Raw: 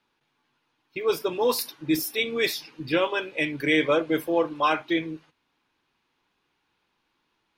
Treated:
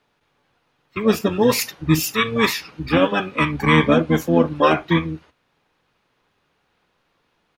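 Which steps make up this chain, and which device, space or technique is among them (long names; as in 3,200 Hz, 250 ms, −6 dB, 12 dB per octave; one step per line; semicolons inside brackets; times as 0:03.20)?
octave pedal (pitch-shifted copies added −12 semitones 0 dB)
level +4 dB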